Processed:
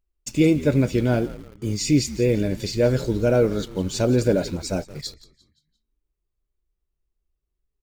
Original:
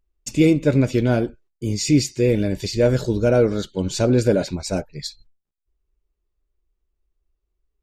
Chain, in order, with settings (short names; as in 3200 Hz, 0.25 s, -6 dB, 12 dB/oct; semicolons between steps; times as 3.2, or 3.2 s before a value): frequency-shifting echo 0.174 s, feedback 42%, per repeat -76 Hz, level -17 dB; in parallel at -8 dB: requantised 6-bit, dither none; on the sum: gain -5 dB